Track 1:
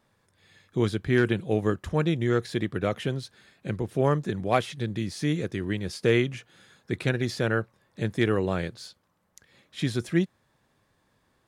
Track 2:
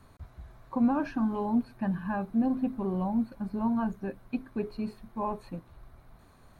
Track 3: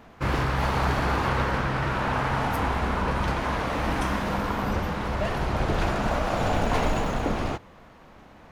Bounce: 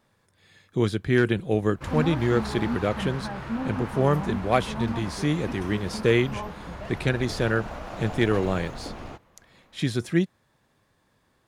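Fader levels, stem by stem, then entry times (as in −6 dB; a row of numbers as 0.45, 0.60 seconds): +1.5, −4.0, −11.0 decibels; 0.00, 1.15, 1.60 seconds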